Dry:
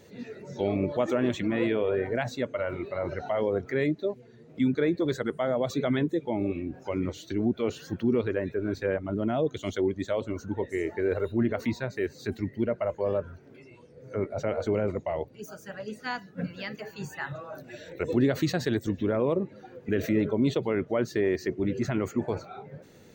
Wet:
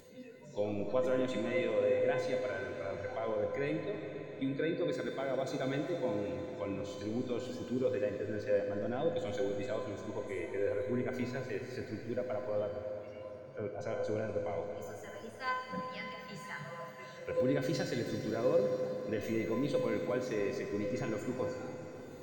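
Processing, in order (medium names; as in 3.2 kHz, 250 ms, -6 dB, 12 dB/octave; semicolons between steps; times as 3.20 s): spectral noise reduction 7 dB; upward compressor, threshold -40 dBFS; feedback comb 490 Hz, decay 0.57 s, mix 90%; reverberation RT60 5.3 s, pre-delay 46 ms, DRR 3.5 dB; speed mistake 24 fps film run at 25 fps; trim +8.5 dB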